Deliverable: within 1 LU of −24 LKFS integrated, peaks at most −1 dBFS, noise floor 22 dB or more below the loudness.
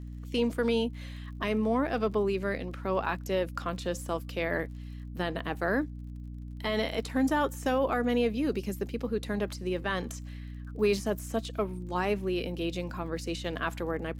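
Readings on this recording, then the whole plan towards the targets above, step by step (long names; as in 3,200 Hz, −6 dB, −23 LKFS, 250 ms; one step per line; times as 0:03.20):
crackle rate 40 per second; mains hum 60 Hz; hum harmonics up to 300 Hz; level of the hum −38 dBFS; integrated loudness −31.0 LKFS; sample peak −16.5 dBFS; target loudness −24.0 LKFS
→ click removal
mains-hum notches 60/120/180/240/300 Hz
level +7 dB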